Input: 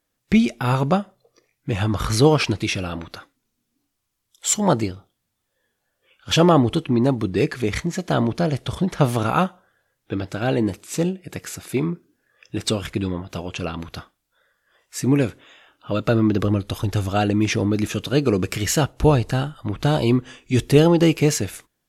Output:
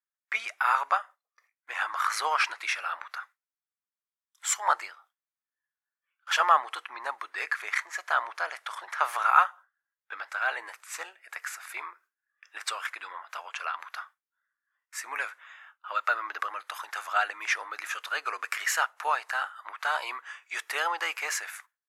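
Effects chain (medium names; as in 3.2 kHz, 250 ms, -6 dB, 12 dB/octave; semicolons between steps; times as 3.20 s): gate with hold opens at -41 dBFS; inverse Chebyshev high-pass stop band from 170 Hz, stop band 80 dB; resonant high shelf 2.4 kHz -9.5 dB, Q 1.5; trim +2.5 dB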